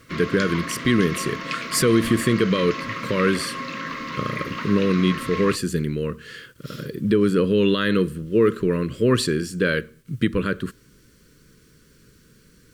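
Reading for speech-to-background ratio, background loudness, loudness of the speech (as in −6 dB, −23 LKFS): 8.5 dB, −30.5 LKFS, −22.0 LKFS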